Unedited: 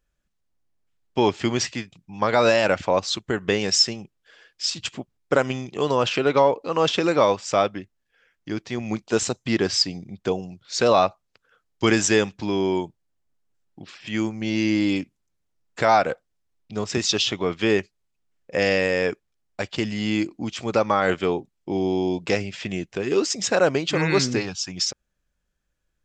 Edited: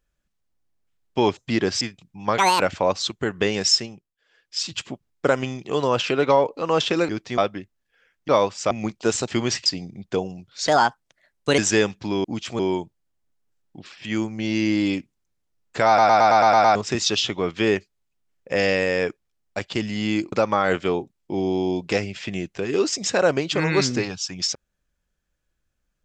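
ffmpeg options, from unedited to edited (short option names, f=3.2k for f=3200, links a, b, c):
-filter_complex "[0:a]asplit=26[a][b][c][d][e][f][g][h][i][j][k][l][m][n][o][p][q][r][s][t][u][v][w][x][y][z];[a]atrim=end=1.372[aa];[b]atrim=start=9.348:end=9.792[ab];[c]atrim=start=1.748:end=2.324[ac];[d]atrim=start=2.32:end=2.67,asetpts=PTS-STARTPTS,asetrate=71001,aresample=44100[ad];[e]atrim=start=2.666:end=4.22,asetpts=PTS-STARTPTS,afade=t=out:st=1.144:d=0.41:silence=0.158489[ae];[f]atrim=start=4.22:end=4.33,asetpts=PTS-STARTPTS,volume=-16dB[af];[g]atrim=start=4.33:end=7.162,asetpts=PTS-STARTPTS,afade=t=in:d=0.41:silence=0.158489[ag];[h]atrim=start=8.488:end=8.782[ah];[i]atrim=start=7.578:end=8.492[ai];[j]atrim=start=7.158:end=7.582[aj];[k]atrim=start=8.778:end=9.352[ak];[l]atrim=start=1.368:end=1.752[al];[m]atrim=start=9.788:end=10.814[am];[n]atrim=start=10.81:end=11.96,asetpts=PTS-STARTPTS,asetrate=56007,aresample=44100,atrim=end_sample=39933,asetpts=PTS-STARTPTS[an];[o]atrim=start=11.956:end=12.622[ao];[p]atrim=start=20.348:end=20.702[ap];[q]atrim=start=12.618:end=16.012[aq];[r]atrim=start=15.898:end=16.012[ar];[s]atrim=start=15.898:end=16.012[as];[t]atrim=start=15.898:end=16.012[at];[u]atrim=start=15.898:end=16.012[au];[v]atrim=start=15.898:end=16.012[av];[w]atrim=start=15.898:end=16.012[aw];[x]atrim=start=15.898:end=16.012[ax];[y]atrim=start=16.778:end=20.352[ay];[z]atrim=start=20.698[az];[aa][ab]acrossfade=d=0.004:c1=hsin:c2=hsin[ba];[ba][ac]acrossfade=d=0.004:c1=hsin:c2=hsin[bb];[bb][ad]acrossfade=d=0.004:c1=hsin:c2=hsin[bc];[ae][af][ag]concat=n=3:v=0:a=1[bd];[bc][bd]acrossfade=d=0.004:c1=hsin:c2=hsin[be];[be][ah]acrossfade=d=0.004:c1=hsin:c2=hsin[bf];[bf][ai]acrossfade=d=0.004:c1=hsin:c2=hsin[bg];[bg][aj]acrossfade=d=0.004:c1=hsin:c2=hsin[bh];[bh][ak]acrossfade=d=0.004:c1=hsin:c2=hsin[bi];[bi][al]acrossfade=d=0.004:c1=hsin:c2=hsin[bj];[bj][am]acrossfade=d=0.004:c1=hsin:c2=hsin[bk];[bk][an]acrossfade=d=0.004:c1=hsin:c2=hsin[bl];[bl][ao]acrossfade=d=0.004:c1=hsin:c2=hsin[bm];[bm][ap]acrossfade=d=0.004:c1=hsin:c2=hsin[bn];[bn][aq]acrossfade=d=0.004:c1=hsin:c2=hsin[bo];[bo][ar]acrossfade=d=0.004:c1=hsin:c2=hsin[bp];[bp][as]acrossfade=d=0.004:c1=hsin:c2=hsin[bq];[bq][at]acrossfade=d=0.004:c1=hsin:c2=hsin[br];[br][au]acrossfade=d=0.004:c1=hsin:c2=hsin[bs];[bs][av]acrossfade=d=0.004:c1=hsin:c2=hsin[bt];[bt][aw]acrossfade=d=0.004:c1=hsin:c2=hsin[bu];[bu][ax]acrossfade=d=0.004:c1=hsin:c2=hsin[bv];[bv][ay]acrossfade=d=0.004:c1=hsin:c2=hsin[bw];[bw][az]acrossfade=d=0.004:c1=hsin:c2=hsin"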